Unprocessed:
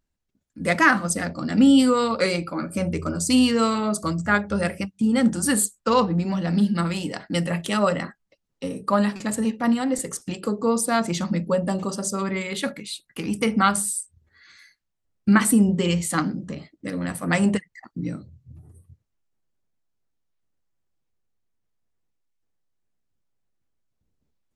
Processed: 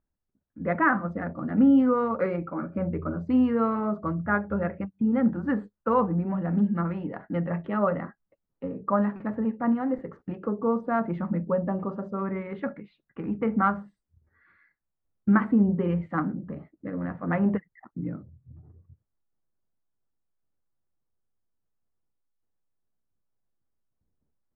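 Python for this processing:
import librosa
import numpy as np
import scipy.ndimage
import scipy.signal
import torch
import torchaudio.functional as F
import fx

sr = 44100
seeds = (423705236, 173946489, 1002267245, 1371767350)

y = scipy.signal.sosfilt(scipy.signal.butter(4, 1600.0, 'lowpass', fs=sr, output='sos'), x)
y = y * librosa.db_to_amplitude(-3.5)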